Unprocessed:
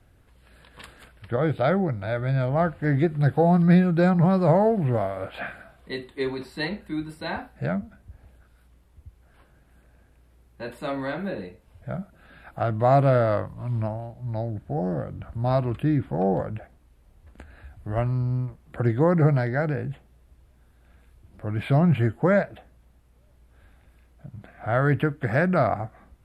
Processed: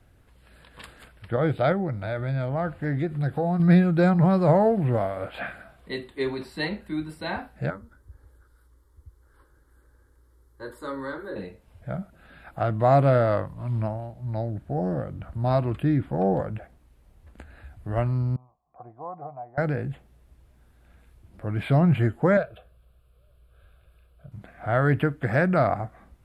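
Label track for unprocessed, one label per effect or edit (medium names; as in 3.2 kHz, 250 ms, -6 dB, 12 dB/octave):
1.720000	3.600000	compression 2:1, threshold -26 dBFS
7.700000	11.360000	static phaser centre 690 Hz, stages 6
18.360000	19.580000	cascade formant filter a
22.370000	24.320000	static phaser centre 1.3 kHz, stages 8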